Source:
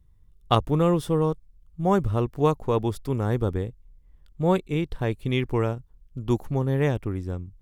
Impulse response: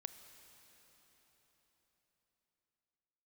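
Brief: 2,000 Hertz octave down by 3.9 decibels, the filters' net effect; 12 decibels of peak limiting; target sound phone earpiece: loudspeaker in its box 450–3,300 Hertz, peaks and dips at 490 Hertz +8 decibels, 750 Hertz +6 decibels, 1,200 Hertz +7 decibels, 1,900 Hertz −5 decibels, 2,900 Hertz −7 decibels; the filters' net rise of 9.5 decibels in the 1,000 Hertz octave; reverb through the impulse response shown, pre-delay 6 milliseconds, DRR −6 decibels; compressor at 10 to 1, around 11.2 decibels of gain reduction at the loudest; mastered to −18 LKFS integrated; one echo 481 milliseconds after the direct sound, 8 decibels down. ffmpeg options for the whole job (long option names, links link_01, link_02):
-filter_complex "[0:a]equalizer=frequency=1000:width_type=o:gain=7,equalizer=frequency=2000:width_type=o:gain=-5,acompressor=threshold=-24dB:ratio=10,alimiter=limit=-23dB:level=0:latency=1,aecho=1:1:481:0.398,asplit=2[link_01][link_02];[1:a]atrim=start_sample=2205,adelay=6[link_03];[link_02][link_03]afir=irnorm=-1:irlink=0,volume=10dB[link_04];[link_01][link_04]amix=inputs=2:normalize=0,highpass=450,equalizer=frequency=490:width_type=q:width=4:gain=8,equalizer=frequency=750:width_type=q:width=4:gain=6,equalizer=frequency=1200:width_type=q:width=4:gain=7,equalizer=frequency=1900:width_type=q:width=4:gain=-5,equalizer=frequency=2900:width_type=q:width=4:gain=-7,lowpass=frequency=3300:width=0.5412,lowpass=frequency=3300:width=1.3066,volume=10dB"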